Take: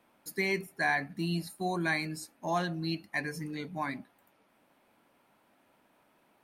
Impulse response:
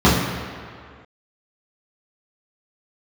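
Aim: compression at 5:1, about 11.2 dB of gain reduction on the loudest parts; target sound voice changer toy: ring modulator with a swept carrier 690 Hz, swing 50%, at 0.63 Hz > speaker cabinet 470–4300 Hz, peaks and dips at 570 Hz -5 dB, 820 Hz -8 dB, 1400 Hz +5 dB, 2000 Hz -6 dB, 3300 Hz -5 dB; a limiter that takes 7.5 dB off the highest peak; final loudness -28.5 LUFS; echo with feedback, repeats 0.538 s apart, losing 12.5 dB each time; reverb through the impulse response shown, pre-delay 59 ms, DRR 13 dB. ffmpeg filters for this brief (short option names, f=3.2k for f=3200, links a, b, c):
-filter_complex "[0:a]acompressor=threshold=-38dB:ratio=5,alimiter=level_in=9.5dB:limit=-24dB:level=0:latency=1,volume=-9.5dB,aecho=1:1:538|1076|1614:0.237|0.0569|0.0137,asplit=2[a][b];[1:a]atrim=start_sample=2205,adelay=59[c];[b][c]afir=irnorm=-1:irlink=0,volume=-38.5dB[d];[a][d]amix=inputs=2:normalize=0,aeval=exprs='val(0)*sin(2*PI*690*n/s+690*0.5/0.63*sin(2*PI*0.63*n/s))':c=same,highpass=470,equalizer=f=570:t=q:w=4:g=-5,equalizer=f=820:t=q:w=4:g=-8,equalizer=f=1.4k:t=q:w=4:g=5,equalizer=f=2k:t=q:w=4:g=-6,equalizer=f=3.3k:t=q:w=4:g=-5,lowpass=f=4.3k:w=0.5412,lowpass=f=4.3k:w=1.3066,volume=20dB"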